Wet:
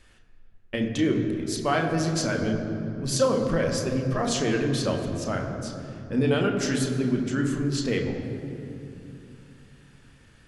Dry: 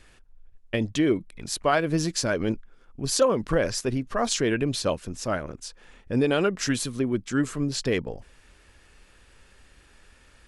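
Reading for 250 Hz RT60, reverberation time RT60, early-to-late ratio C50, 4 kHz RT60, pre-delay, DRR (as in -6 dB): 4.1 s, 2.7 s, 5.0 dB, 1.7 s, 3 ms, 1.5 dB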